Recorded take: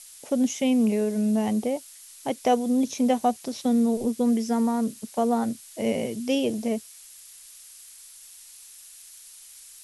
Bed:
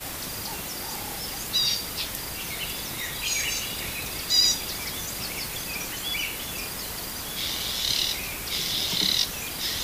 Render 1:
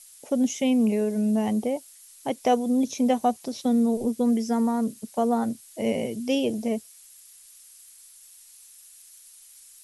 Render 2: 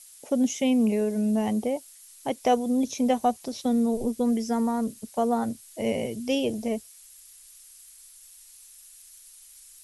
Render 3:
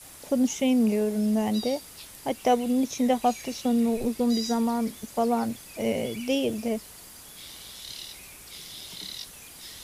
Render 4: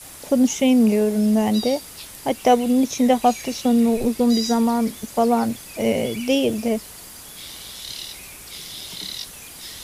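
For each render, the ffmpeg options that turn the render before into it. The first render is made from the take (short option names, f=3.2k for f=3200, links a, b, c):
-af "afftdn=nr=6:nf=-48"
-af "asubboost=boost=3.5:cutoff=89"
-filter_complex "[1:a]volume=-15dB[a];[0:a][a]amix=inputs=2:normalize=0"
-af "volume=6.5dB"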